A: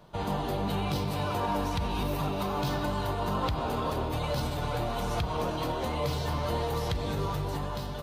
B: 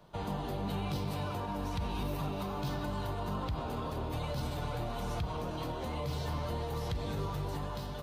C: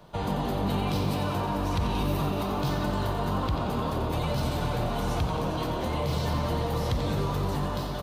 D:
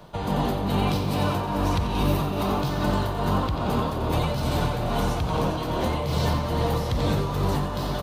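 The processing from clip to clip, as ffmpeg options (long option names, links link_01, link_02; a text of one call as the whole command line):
ffmpeg -i in.wav -filter_complex "[0:a]acrossover=split=270[link_01][link_02];[link_02]acompressor=threshold=-33dB:ratio=6[link_03];[link_01][link_03]amix=inputs=2:normalize=0,volume=-4dB" out.wav
ffmpeg -i in.wav -filter_complex "[0:a]asplit=9[link_01][link_02][link_03][link_04][link_05][link_06][link_07][link_08][link_09];[link_02]adelay=89,afreqshift=46,volume=-8.5dB[link_10];[link_03]adelay=178,afreqshift=92,volume=-12.5dB[link_11];[link_04]adelay=267,afreqshift=138,volume=-16.5dB[link_12];[link_05]adelay=356,afreqshift=184,volume=-20.5dB[link_13];[link_06]adelay=445,afreqshift=230,volume=-24.6dB[link_14];[link_07]adelay=534,afreqshift=276,volume=-28.6dB[link_15];[link_08]adelay=623,afreqshift=322,volume=-32.6dB[link_16];[link_09]adelay=712,afreqshift=368,volume=-36.6dB[link_17];[link_01][link_10][link_11][link_12][link_13][link_14][link_15][link_16][link_17]amix=inputs=9:normalize=0,volume=7dB" out.wav
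ffmpeg -i in.wav -af "tremolo=f=2.4:d=0.43,volume=5.5dB" out.wav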